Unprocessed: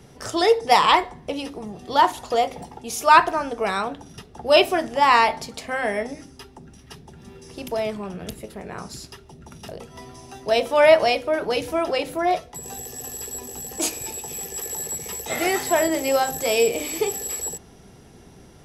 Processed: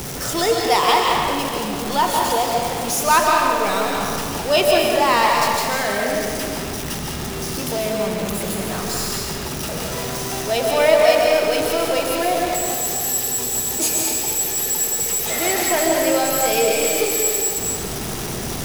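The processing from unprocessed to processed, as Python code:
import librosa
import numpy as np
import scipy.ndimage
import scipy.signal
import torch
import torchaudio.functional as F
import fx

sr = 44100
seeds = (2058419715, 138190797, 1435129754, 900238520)

y = x + 0.5 * 10.0 ** (-21.5 / 20.0) * np.sign(x)
y = fx.high_shelf(y, sr, hz=5400.0, db=7.0)
y = fx.rev_freeverb(y, sr, rt60_s=2.1, hf_ratio=0.8, predelay_ms=100, drr_db=-1.0)
y = F.gain(torch.from_numpy(y), -4.0).numpy()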